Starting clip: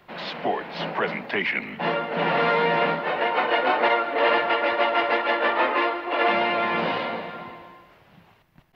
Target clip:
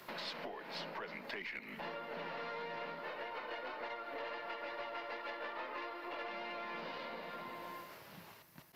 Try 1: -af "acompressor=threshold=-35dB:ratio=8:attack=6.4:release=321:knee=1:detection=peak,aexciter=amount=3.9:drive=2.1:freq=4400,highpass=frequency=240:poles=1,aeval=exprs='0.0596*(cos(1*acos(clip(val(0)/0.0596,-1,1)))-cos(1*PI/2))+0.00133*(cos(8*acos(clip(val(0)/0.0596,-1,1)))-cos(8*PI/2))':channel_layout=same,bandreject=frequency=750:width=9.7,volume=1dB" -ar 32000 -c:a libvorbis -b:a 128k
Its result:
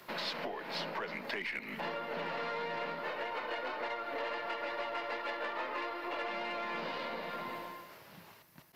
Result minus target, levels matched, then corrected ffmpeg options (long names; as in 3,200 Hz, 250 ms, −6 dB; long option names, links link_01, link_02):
downward compressor: peak gain reduction −5.5 dB
-af "acompressor=threshold=-41.5dB:ratio=8:attack=6.4:release=321:knee=1:detection=peak,aexciter=amount=3.9:drive=2.1:freq=4400,highpass=frequency=240:poles=1,aeval=exprs='0.0596*(cos(1*acos(clip(val(0)/0.0596,-1,1)))-cos(1*PI/2))+0.00133*(cos(8*acos(clip(val(0)/0.0596,-1,1)))-cos(8*PI/2))':channel_layout=same,bandreject=frequency=750:width=9.7,volume=1dB" -ar 32000 -c:a libvorbis -b:a 128k